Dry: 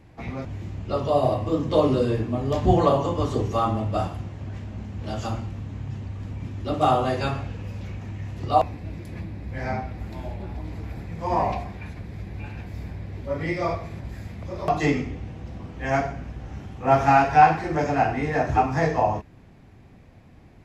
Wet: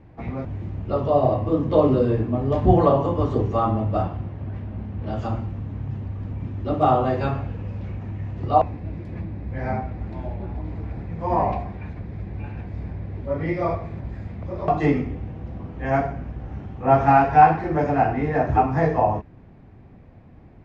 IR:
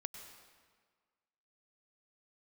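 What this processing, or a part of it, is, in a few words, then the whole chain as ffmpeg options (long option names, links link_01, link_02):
through cloth: -filter_complex "[0:a]asettb=1/sr,asplit=3[link_01][link_02][link_03];[link_01]atrim=end=4.024[link_04];[link_02]atrim=start=4.02:end=5.13,asetpts=PTS-STARTPTS,afade=type=in:duration=0.004:curve=qsin,afade=type=out:start_time=1.106:duration=0.004:curve=qsin,lowpass=5100[link_05];[link_03]atrim=start=5.126[link_06];[link_04][link_05]acrossfade=duration=0.004:curve1=hsin:curve2=qsin[link_07];[link_07][link_06]acrossfade=duration=0.004:curve1=qsin:curve2=hsin,lowpass=6600,highshelf=frequency=2900:gain=-17.5,volume=3dB"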